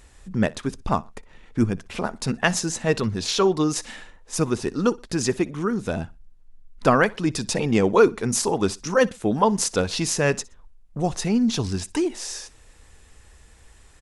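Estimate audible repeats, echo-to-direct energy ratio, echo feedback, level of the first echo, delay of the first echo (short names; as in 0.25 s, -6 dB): 2, -22.5 dB, 32%, -23.0 dB, 61 ms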